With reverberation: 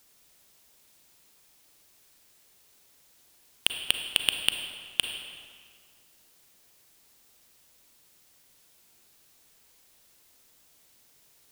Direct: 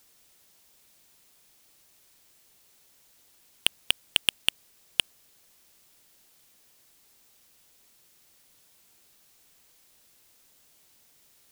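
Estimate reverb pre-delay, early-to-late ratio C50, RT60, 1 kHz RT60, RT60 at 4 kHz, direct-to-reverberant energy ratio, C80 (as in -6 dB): 33 ms, 5.5 dB, 2.0 s, 2.0 s, 1.4 s, 5.0 dB, 7.0 dB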